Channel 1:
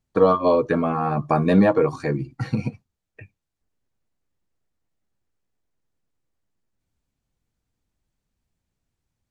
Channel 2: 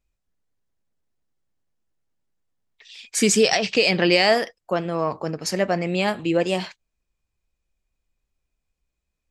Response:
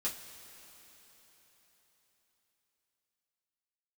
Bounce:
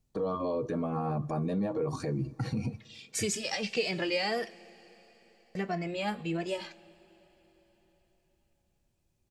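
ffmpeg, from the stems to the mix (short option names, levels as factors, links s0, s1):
-filter_complex "[0:a]equalizer=f=1700:w=0.72:g=-9,acompressor=threshold=0.0794:ratio=6,alimiter=level_in=1.5:limit=0.0631:level=0:latency=1:release=48,volume=0.668,volume=1.33,asplit=2[s0][s1];[s1]volume=0.133[s2];[1:a]acompressor=threshold=0.0708:ratio=2,asplit=2[s3][s4];[s4]adelay=2.2,afreqshift=-1.6[s5];[s3][s5]amix=inputs=2:normalize=1,volume=0.501,asplit=3[s6][s7][s8];[s6]atrim=end=4.66,asetpts=PTS-STARTPTS,afade=t=out:st=4.656:d=0.004:c=hsin[s9];[s7]atrim=start=4.66:end=5.55,asetpts=PTS-STARTPTS,volume=0[s10];[s8]atrim=start=5.55,asetpts=PTS-STARTPTS,afade=t=in:d=0.004:c=hsin[s11];[s9][s10][s11]concat=n=3:v=0:a=1,asplit=2[s12][s13];[s13]volume=0.237[s14];[2:a]atrim=start_sample=2205[s15];[s2][s14]amix=inputs=2:normalize=0[s16];[s16][s15]afir=irnorm=-1:irlink=0[s17];[s0][s12][s17]amix=inputs=3:normalize=0"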